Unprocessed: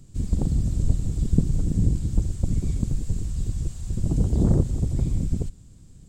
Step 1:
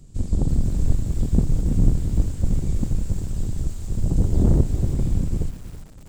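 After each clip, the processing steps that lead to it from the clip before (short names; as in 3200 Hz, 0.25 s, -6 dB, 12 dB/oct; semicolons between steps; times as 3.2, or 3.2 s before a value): octaver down 2 oct, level +1 dB; lo-fi delay 0.329 s, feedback 35%, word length 6-bit, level -13.5 dB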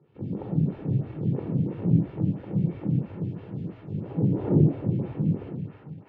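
elliptic band-pass 130–2800 Hz, stop band 50 dB; shoebox room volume 2100 m³, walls furnished, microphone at 4.3 m; photocell phaser 3 Hz; gain -2.5 dB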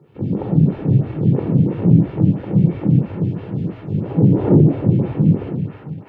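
maximiser +12 dB; gain -1 dB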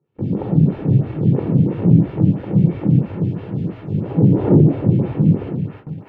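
gate with hold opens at -27 dBFS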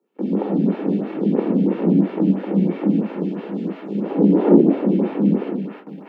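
steep high-pass 190 Hz 72 dB/oct; gain +3 dB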